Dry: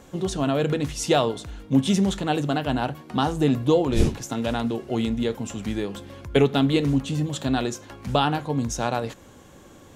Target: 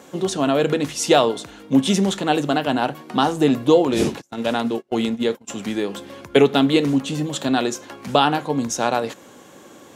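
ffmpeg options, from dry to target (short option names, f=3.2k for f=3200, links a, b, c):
-filter_complex "[0:a]highpass=220,asplit=3[a][b][c];[a]afade=t=out:st=4.2:d=0.02[d];[b]agate=range=-32dB:threshold=-28dB:ratio=16:detection=peak,afade=t=in:st=4.2:d=0.02,afade=t=out:st=5.47:d=0.02[e];[c]afade=t=in:st=5.47:d=0.02[f];[d][e][f]amix=inputs=3:normalize=0,volume=5.5dB"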